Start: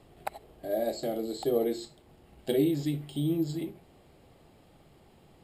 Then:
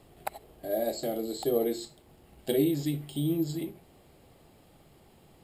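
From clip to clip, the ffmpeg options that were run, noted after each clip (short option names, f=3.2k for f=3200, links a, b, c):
-af "highshelf=f=8k:g=8.5"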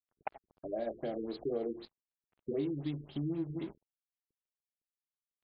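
-af "aeval=exprs='sgn(val(0))*max(abs(val(0))-0.00422,0)':c=same,acompressor=threshold=-35dB:ratio=2.5,afftfilt=real='re*lt(b*sr/1024,440*pow(5200/440,0.5+0.5*sin(2*PI*3.9*pts/sr)))':imag='im*lt(b*sr/1024,440*pow(5200/440,0.5+0.5*sin(2*PI*3.9*pts/sr)))':win_size=1024:overlap=0.75"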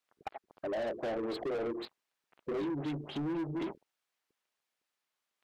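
-filter_complex "[0:a]alimiter=level_in=4dB:limit=-24dB:level=0:latency=1:release=347,volume=-4dB,asplit=2[a][b];[b]highpass=f=720:p=1,volume=23dB,asoftclip=type=tanh:threshold=-27.5dB[c];[a][c]amix=inputs=2:normalize=0,lowpass=f=2.4k:p=1,volume=-6dB,volume=31dB,asoftclip=hard,volume=-31dB"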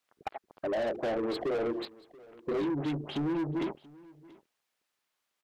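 -af "aecho=1:1:682:0.075,volume=4dB"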